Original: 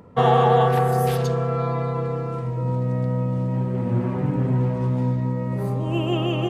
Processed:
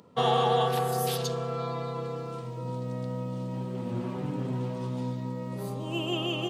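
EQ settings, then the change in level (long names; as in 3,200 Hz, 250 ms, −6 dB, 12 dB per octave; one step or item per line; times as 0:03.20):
high-pass filter 150 Hz 12 dB per octave
parametric band 1,200 Hz +2.5 dB
high shelf with overshoot 2,600 Hz +9 dB, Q 1.5
−7.5 dB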